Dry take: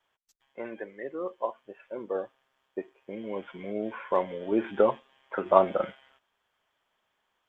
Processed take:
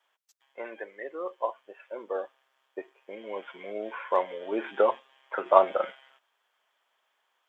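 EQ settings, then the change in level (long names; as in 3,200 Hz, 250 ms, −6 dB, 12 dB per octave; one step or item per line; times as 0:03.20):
high-pass filter 510 Hz 12 dB per octave
+2.5 dB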